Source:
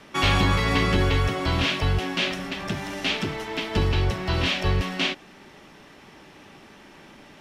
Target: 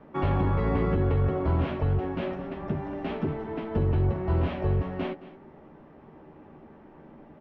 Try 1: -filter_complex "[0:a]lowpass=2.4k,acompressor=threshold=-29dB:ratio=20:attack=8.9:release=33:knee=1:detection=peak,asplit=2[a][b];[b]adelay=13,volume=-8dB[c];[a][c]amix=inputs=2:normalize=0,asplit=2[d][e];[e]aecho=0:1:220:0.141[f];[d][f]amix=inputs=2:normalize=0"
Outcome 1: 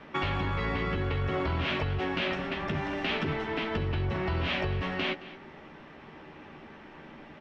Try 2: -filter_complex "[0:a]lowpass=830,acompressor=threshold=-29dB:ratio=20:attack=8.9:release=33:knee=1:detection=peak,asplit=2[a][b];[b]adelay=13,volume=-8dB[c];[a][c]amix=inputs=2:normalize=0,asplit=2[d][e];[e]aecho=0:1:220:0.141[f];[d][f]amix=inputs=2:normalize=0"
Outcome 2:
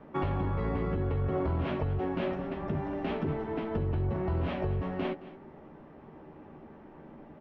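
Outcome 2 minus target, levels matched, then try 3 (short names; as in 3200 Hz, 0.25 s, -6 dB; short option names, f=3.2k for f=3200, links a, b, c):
compressor: peak gain reduction +6 dB
-filter_complex "[0:a]lowpass=830,acompressor=threshold=-22.5dB:ratio=20:attack=8.9:release=33:knee=1:detection=peak,asplit=2[a][b];[b]adelay=13,volume=-8dB[c];[a][c]amix=inputs=2:normalize=0,asplit=2[d][e];[e]aecho=0:1:220:0.141[f];[d][f]amix=inputs=2:normalize=0"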